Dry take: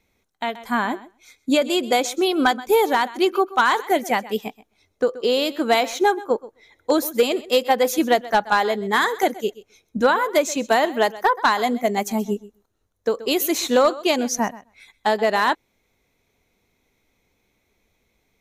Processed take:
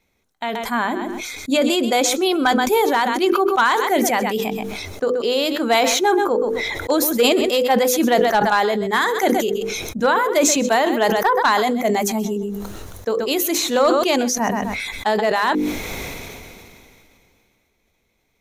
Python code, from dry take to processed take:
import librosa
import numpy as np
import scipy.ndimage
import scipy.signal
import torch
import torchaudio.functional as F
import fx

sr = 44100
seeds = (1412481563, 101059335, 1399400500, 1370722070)

y = fx.hum_notches(x, sr, base_hz=50, count=10)
y = fx.sustainer(y, sr, db_per_s=23.0)